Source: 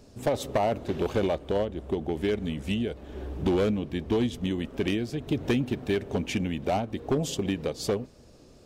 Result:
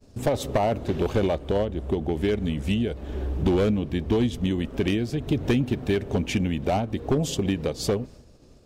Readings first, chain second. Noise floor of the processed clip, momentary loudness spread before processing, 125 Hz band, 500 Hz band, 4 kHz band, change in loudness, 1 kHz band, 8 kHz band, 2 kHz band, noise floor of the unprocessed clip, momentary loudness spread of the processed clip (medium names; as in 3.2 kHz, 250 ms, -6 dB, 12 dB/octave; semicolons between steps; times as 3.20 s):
-52 dBFS, 4 LU, +6.0 dB, +2.5 dB, +2.5 dB, +3.5 dB, +2.0 dB, +3.0 dB, +2.0 dB, -53 dBFS, 4 LU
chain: expander -45 dBFS; bass shelf 130 Hz +7 dB; in parallel at +2 dB: compression, threshold -38 dBFS, peak gain reduction 17 dB